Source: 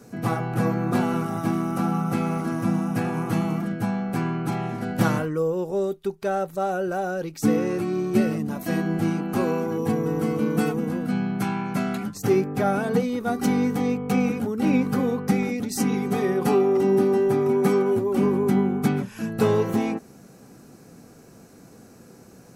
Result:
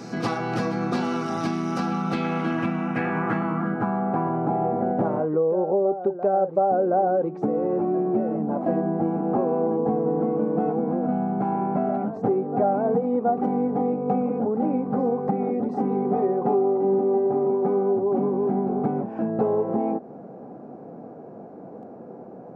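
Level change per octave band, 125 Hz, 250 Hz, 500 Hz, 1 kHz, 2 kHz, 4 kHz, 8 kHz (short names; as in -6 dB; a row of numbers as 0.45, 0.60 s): -4.5 dB, -1.5 dB, +1.5 dB, +4.0 dB, -3.5 dB, n/a, under -10 dB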